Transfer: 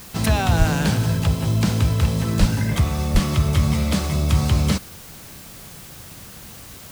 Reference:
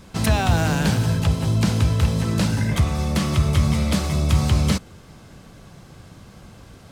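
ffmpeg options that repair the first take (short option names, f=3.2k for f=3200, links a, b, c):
-filter_complex "[0:a]asplit=3[a][b][c];[a]afade=t=out:st=0.58:d=0.02[d];[b]highpass=f=140:w=0.5412,highpass=f=140:w=1.3066,afade=t=in:st=0.58:d=0.02,afade=t=out:st=0.7:d=0.02[e];[c]afade=t=in:st=0.7:d=0.02[f];[d][e][f]amix=inputs=3:normalize=0,asplit=3[g][h][i];[g]afade=t=out:st=2.39:d=0.02[j];[h]highpass=f=140:w=0.5412,highpass=f=140:w=1.3066,afade=t=in:st=2.39:d=0.02,afade=t=out:st=2.51:d=0.02[k];[i]afade=t=in:st=2.51:d=0.02[l];[j][k][l]amix=inputs=3:normalize=0,asplit=3[m][n][o];[m]afade=t=out:st=3.13:d=0.02[p];[n]highpass=f=140:w=0.5412,highpass=f=140:w=1.3066,afade=t=in:st=3.13:d=0.02,afade=t=out:st=3.25:d=0.02[q];[o]afade=t=in:st=3.25:d=0.02[r];[p][q][r]amix=inputs=3:normalize=0,afwtdn=0.0079"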